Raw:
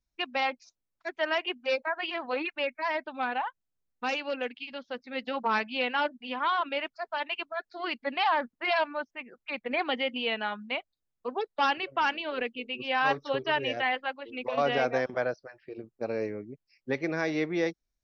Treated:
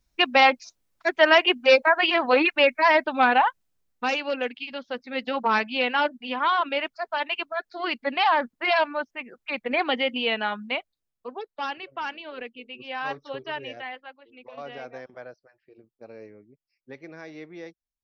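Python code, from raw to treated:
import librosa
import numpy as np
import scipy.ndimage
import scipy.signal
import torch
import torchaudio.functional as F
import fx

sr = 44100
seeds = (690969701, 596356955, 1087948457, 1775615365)

y = fx.gain(x, sr, db=fx.line((3.47, 12.0), (4.1, 5.0), (10.68, 5.0), (11.48, -5.0), (13.56, -5.0), (14.25, -12.0)))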